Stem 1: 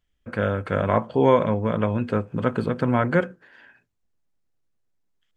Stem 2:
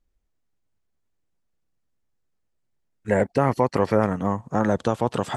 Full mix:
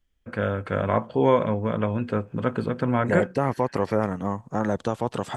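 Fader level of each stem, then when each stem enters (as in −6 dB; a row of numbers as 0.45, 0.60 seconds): −2.0, −3.5 decibels; 0.00, 0.00 seconds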